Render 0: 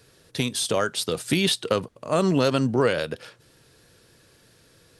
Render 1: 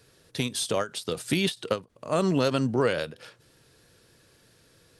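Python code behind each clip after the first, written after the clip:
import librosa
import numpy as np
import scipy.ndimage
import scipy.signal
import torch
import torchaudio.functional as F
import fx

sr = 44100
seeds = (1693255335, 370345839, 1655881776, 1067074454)

y = fx.end_taper(x, sr, db_per_s=280.0)
y = y * 10.0 ** (-3.0 / 20.0)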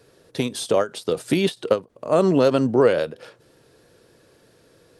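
y = fx.peak_eq(x, sr, hz=480.0, db=10.0, octaves=2.6)
y = y * 10.0 ** (-1.0 / 20.0)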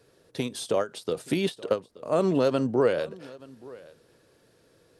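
y = x + 10.0 ** (-21.5 / 20.0) * np.pad(x, (int(876 * sr / 1000.0), 0))[:len(x)]
y = y * 10.0 ** (-6.0 / 20.0)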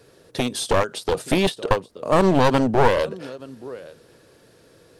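y = np.minimum(x, 2.0 * 10.0 ** (-25.0 / 20.0) - x)
y = y * 10.0 ** (8.5 / 20.0)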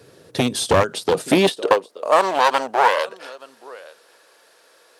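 y = fx.filter_sweep_highpass(x, sr, from_hz=97.0, to_hz=820.0, start_s=0.78, end_s=2.27, q=1.1)
y = y * 10.0 ** (3.5 / 20.0)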